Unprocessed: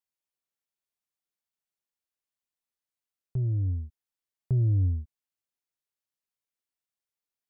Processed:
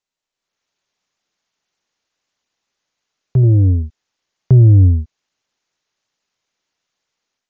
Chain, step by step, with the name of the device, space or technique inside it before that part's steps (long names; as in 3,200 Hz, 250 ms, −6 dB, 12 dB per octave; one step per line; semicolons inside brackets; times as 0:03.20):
0:03.43–0:03.83: dynamic equaliser 450 Hz, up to +6 dB, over −51 dBFS, Q 1
Bluetooth headset (high-pass filter 110 Hz 6 dB per octave; automatic gain control gain up to 14 dB; downsampling to 16,000 Hz; level +5 dB; SBC 64 kbit/s 16,000 Hz)